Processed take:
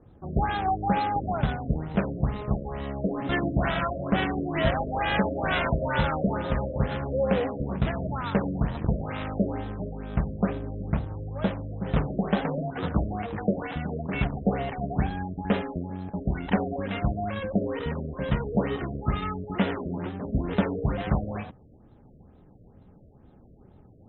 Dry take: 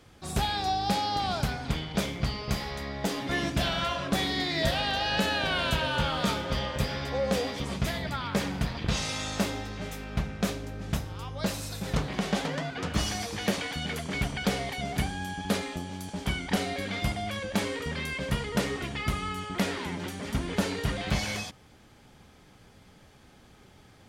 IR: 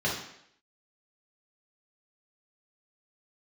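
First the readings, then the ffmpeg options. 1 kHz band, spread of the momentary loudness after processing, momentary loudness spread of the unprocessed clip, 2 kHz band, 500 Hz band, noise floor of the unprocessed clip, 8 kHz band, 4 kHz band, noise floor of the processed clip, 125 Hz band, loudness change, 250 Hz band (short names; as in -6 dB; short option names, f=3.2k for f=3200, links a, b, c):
+2.5 dB, 7 LU, 7 LU, -1.5 dB, +4.0 dB, -56 dBFS, under -40 dB, -9.5 dB, -54 dBFS, +4.0 dB, +2.0 dB, +4.0 dB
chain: -af "adynamicsmooth=sensitivity=4.5:basefreq=700,acrusher=samples=9:mix=1:aa=0.000001,afftfilt=real='re*lt(b*sr/1024,660*pow(4100/660,0.5+0.5*sin(2*PI*2.2*pts/sr)))':imag='im*lt(b*sr/1024,660*pow(4100/660,0.5+0.5*sin(2*PI*2.2*pts/sr)))':win_size=1024:overlap=0.75,volume=4dB"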